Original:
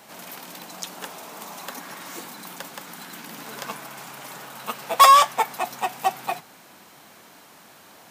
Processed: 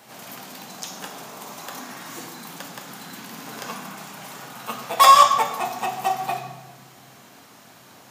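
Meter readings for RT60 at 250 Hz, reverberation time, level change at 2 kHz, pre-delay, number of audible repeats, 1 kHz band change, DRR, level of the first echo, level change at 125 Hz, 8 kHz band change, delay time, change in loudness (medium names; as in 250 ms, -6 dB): 1.4 s, 1.1 s, 0.0 dB, 3 ms, no echo, +1.0 dB, 3.0 dB, no echo, no reading, +0.5 dB, no echo, +1.5 dB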